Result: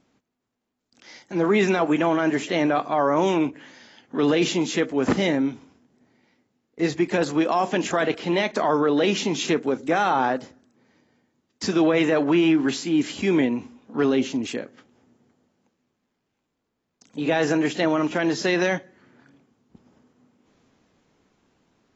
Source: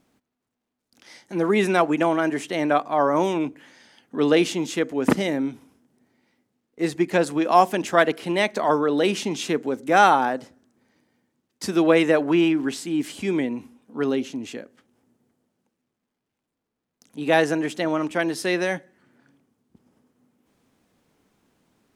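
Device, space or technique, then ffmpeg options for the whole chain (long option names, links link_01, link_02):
low-bitrate web radio: -af "dynaudnorm=framelen=100:gausssize=31:maxgain=5.5dB,alimiter=limit=-12dB:level=0:latency=1:release=14" -ar 22050 -c:a aac -b:a 24k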